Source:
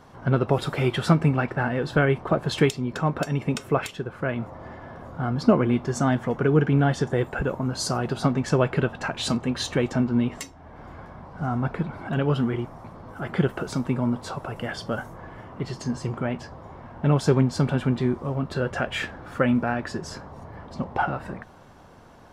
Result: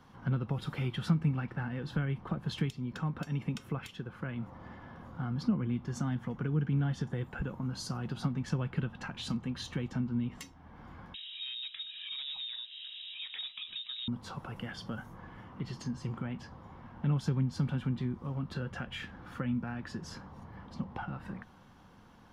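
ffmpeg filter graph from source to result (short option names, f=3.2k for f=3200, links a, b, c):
-filter_complex "[0:a]asettb=1/sr,asplit=3[a][b][c];[a]atrim=end=11.144[d];[b]atrim=start=11.14:end=14.08,asetpts=PTS-STARTPTS,afade=t=in:d=0.004:c=qsin,afade=t=out:st=2.936:d=0.004:c=qsin,acompressor=mode=upward:threshold=-31dB:ratio=2.5:attack=3.2:release=140:knee=2.83:detection=peak,asoftclip=type=hard:threshold=-22dB,lowpass=f=3.3k:t=q:w=0.5098,lowpass=f=3.3k:t=q:w=0.6013,lowpass=f=3.3k:t=q:w=0.9,lowpass=f=3.3k:t=q:w=2.563,afreqshift=-3900[e];[c]atrim=start=14.076[f];[d][e]acrossfade=d=0.004:c1=hsin:c2=qsin[g];[g][f]acrossfade=d=0.004:c1=qsin:c2=hsin,equalizer=f=200:t=o:w=0.33:g=6,equalizer=f=400:t=o:w=0.33:g=-6,equalizer=f=630:t=o:w=0.33:g=-10,equalizer=f=3.15k:t=o:w=0.33:g=4,equalizer=f=8k:t=o:w=0.33:g=-6,acrossover=split=200[h][i];[i]acompressor=threshold=-33dB:ratio=3[j];[h][j]amix=inputs=2:normalize=0,volume=-7.5dB"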